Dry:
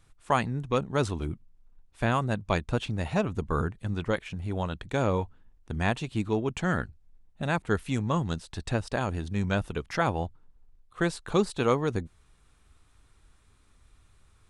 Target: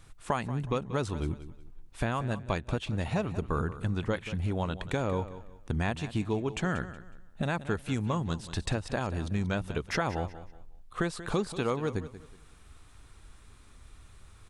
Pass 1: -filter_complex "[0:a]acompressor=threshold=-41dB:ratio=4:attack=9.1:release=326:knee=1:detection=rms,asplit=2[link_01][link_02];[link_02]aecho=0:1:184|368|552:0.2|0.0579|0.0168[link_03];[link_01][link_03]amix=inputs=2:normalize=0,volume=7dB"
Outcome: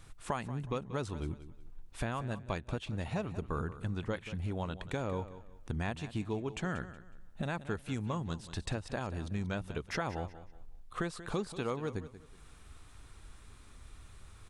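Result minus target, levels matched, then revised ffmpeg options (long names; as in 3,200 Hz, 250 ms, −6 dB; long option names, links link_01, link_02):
downward compressor: peak gain reduction +5.5 dB
-filter_complex "[0:a]acompressor=threshold=-33.5dB:ratio=4:attack=9.1:release=326:knee=1:detection=rms,asplit=2[link_01][link_02];[link_02]aecho=0:1:184|368|552:0.2|0.0579|0.0168[link_03];[link_01][link_03]amix=inputs=2:normalize=0,volume=7dB"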